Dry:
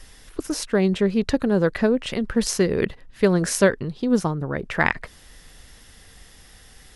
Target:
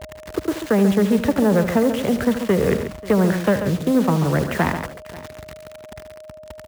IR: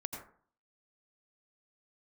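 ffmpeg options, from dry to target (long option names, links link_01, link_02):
-filter_complex "[0:a]aresample=8000,aresample=44100,acrossover=split=85|200|450|1500[link_01][link_02][link_03][link_04][link_05];[link_01]acompressor=threshold=-43dB:ratio=4[link_06];[link_02]acompressor=threshold=-26dB:ratio=4[link_07];[link_03]acompressor=threshold=-34dB:ratio=4[link_08];[link_04]acompressor=threshold=-27dB:ratio=4[link_09];[link_05]acompressor=threshold=-45dB:ratio=4[link_10];[link_06][link_07][link_08][link_09][link_10]amix=inputs=5:normalize=0,acrossover=split=200|1700[link_11][link_12][link_13];[link_13]aeval=exprs='sgn(val(0))*max(abs(val(0))-0.00224,0)':channel_layout=same[link_14];[link_11][link_12][link_14]amix=inputs=3:normalize=0,asetrate=45938,aresample=44100,acrusher=bits=6:mix=0:aa=0.000001,asoftclip=type=tanh:threshold=-17.5dB,highpass=frequency=51:width=0.5412,highpass=frequency=51:width=1.3066,asplit=2[link_15][link_16];[link_16]aecho=0:1:76|138|537:0.237|0.335|0.1[link_17];[link_15][link_17]amix=inputs=2:normalize=0,aeval=exprs='val(0)+0.00447*sin(2*PI*620*n/s)':channel_layout=same,volume=9dB"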